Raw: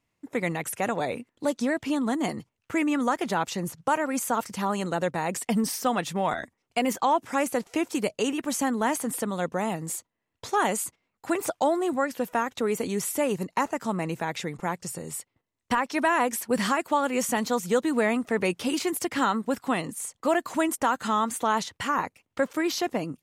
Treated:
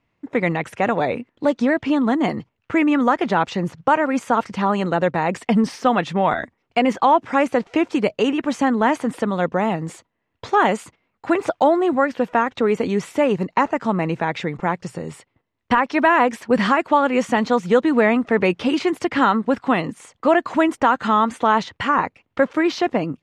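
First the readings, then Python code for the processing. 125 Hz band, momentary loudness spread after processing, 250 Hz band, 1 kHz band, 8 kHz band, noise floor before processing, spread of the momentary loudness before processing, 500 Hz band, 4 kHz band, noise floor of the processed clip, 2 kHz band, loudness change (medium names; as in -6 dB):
+8.0 dB, 7 LU, +8.0 dB, +8.0 dB, -9.0 dB, -80 dBFS, 7 LU, +8.0 dB, +3.5 dB, -73 dBFS, +7.5 dB, +7.5 dB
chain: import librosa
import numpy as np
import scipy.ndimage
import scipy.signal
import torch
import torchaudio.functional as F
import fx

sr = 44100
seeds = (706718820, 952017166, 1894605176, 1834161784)

y = scipy.signal.sosfilt(scipy.signal.butter(2, 3100.0, 'lowpass', fs=sr, output='sos'), x)
y = F.gain(torch.from_numpy(y), 8.0).numpy()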